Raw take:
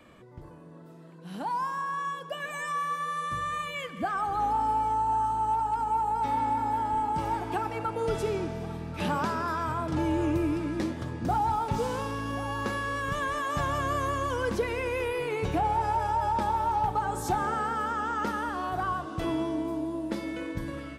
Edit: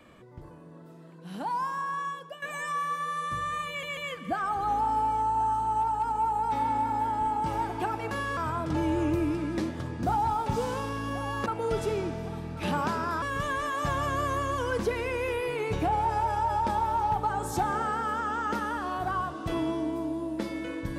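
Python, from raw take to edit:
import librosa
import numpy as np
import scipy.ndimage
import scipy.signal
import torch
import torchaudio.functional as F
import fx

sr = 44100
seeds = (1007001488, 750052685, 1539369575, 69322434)

y = fx.edit(x, sr, fx.fade_out_to(start_s=1.89, length_s=0.53, curve='qsin', floor_db=-12.0),
    fx.stutter(start_s=3.69, slice_s=0.14, count=3),
    fx.swap(start_s=7.83, length_s=1.76, other_s=12.68, other_length_s=0.26), tone=tone)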